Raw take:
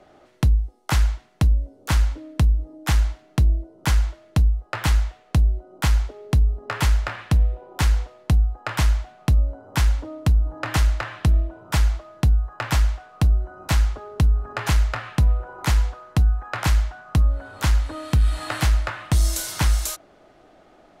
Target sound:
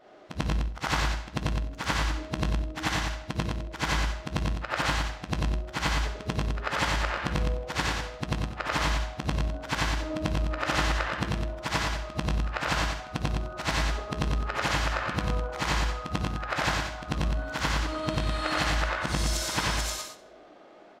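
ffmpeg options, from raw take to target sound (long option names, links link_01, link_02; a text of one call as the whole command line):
ffmpeg -i in.wav -filter_complex "[0:a]afftfilt=real='re':imag='-im':win_size=8192:overlap=0.75,asplit=2[link_01][link_02];[link_02]adelay=158,lowpass=frequency=3700:poles=1,volume=-18dB,asplit=2[link_03][link_04];[link_04]adelay=158,lowpass=frequency=3700:poles=1,volume=0.32,asplit=2[link_05][link_06];[link_06]adelay=158,lowpass=frequency=3700:poles=1,volume=0.32[link_07];[link_03][link_05][link_07]amix=inputs=3:normalize=0[link_08];[link_01][link_08]amix=inputs=2:normalize=0,flanger=delay=7.6:depth=7.2:regen=-64:speed=0.6:shape=sinusoidal,acrossover=split=180 6700:gain=0.141 1 0.2[link_09][link_10][link_11];[link_09][link_10][link_11]amix=inputs=3:normalize=0,asplit=2[link_12][link_13];[link_13]aecho=0:1:56|91|113:0.188|0.251|0.562[link_14];[link_12][link_14]amix=inputs=2:normalize=0,volume=8.5dB" out.wav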